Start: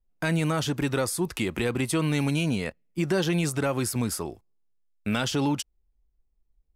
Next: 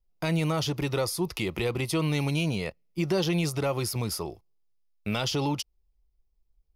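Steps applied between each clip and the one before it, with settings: graphic EQ with 31 bands 250 Hz -11 dB, 1.6 kHz -11 dB, 5 kHz +5 dB, 8 kHz -11 dB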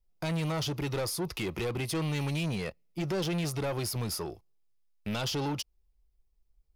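saturation -27.5 dBFS, distortion -11 dB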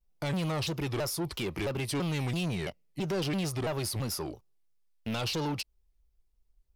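vibrato with a chosen wave saw down 3 Hz, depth 250 cents

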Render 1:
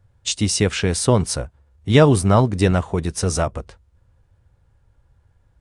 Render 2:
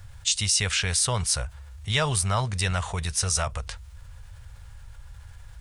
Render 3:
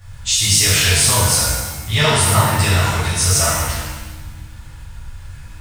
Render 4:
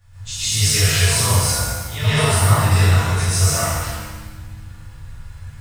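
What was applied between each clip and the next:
amplifier tone stack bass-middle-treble 10-0-10; level flattener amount 50%
in parallel at -7.5 dB: overload inside the chain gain 16 dB; on the sum: pitch-shifted reverb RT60 1.2 s, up +7 st, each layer -8 dB, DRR -11.5 dB; trim -4.5 dB
plate-style reverb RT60 0.67 s, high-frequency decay 0.65×, pre-delay 110 ms, DRR -10 dB; trim -13 dB

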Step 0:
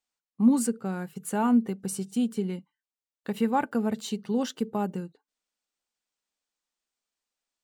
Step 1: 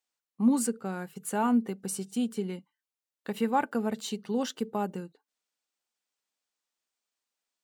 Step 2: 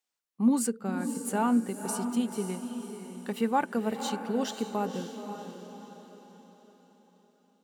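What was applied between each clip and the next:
bass shelf 150 Hz -11.5 dB
echo that smears into a reverb 537 ms, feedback 44%, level -8 dB

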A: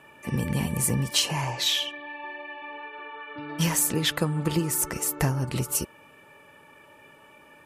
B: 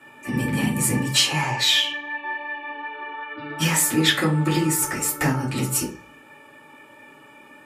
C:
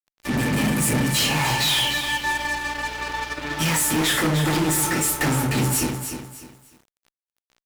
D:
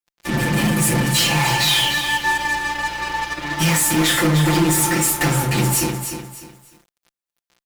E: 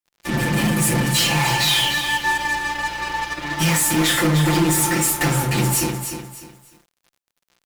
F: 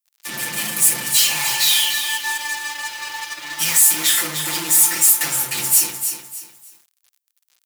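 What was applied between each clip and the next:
dynamic bell 1.8 kHz, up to +4 dB, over -40 dBFS, Q 1.1; reverberation RT60 0.35 s, pre-delay 3 ms, DRR -5.5 dB; trim -1.5 dB
hum 60 Hz, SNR 23 dB; fuzz box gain 29 dB, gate -35 dBFS; bit-crushed delay 301 ms, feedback 35%, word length 7-bit, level -8 dB; trim -6 dB
comb 5.8 ms, depth 72%; trim +1.5 dB
crackle 32 per s -46 dBFS; trim -1 dB
tilt EQ +4.5 dB/octave; trim -7 dB

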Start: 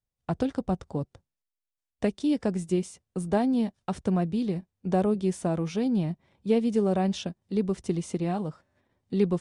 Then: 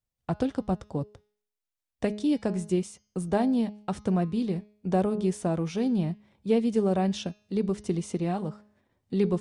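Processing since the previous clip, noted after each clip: de-hum 209.1 Hz, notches 31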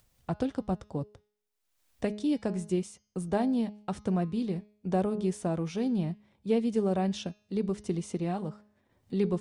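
upward compressor, threshold -47 dBFS; trim -3 dB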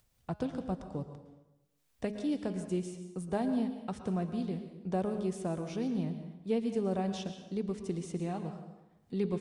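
plate-style reverb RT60 1 s, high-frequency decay 0.8×, pre-delay 100 ms, DRR 8 dB; trim -4.5 dB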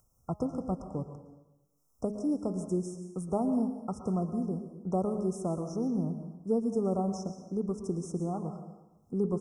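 brick-wall FIR band-stop 1.4–5.1 kHz; trim +2.5 dB

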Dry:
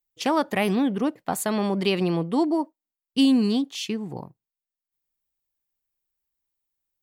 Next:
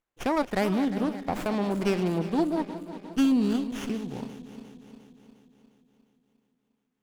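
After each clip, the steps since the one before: backward echo that repeats 177 ms, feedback 74%, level -12 dB; sliding maximum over 9 samples; trim -3.5 dB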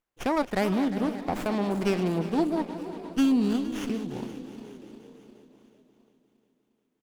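frequency-shifting echo 462 ms, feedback 48%, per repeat +48 Hz, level -16.5 dB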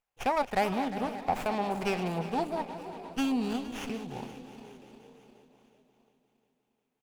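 graphic EQ with 31 bands 200 Hz -5 dB, 315 Hz -12 dB, 800 Hz +8 dB, 2.5 kHz +5 dB; trim -2.5 dB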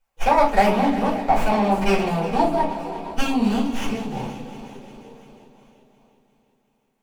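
simulated room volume 170 m³, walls furnished, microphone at 4.8 m

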